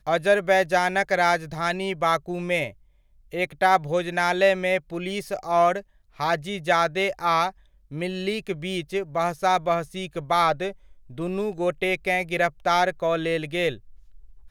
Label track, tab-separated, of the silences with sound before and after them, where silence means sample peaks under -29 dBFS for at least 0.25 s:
2.680000	3.340000	silence
5.800000	6.200000	silence
7.500000	7.930000	silence
10.710000	11.180000	silence